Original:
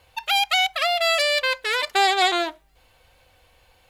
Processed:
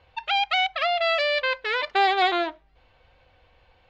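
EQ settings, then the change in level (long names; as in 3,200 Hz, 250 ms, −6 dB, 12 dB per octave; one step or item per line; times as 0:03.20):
low-pass filter 6,700 Hz 12 dB per octave
high-frequency loss of the air 210 metres
0.0 dB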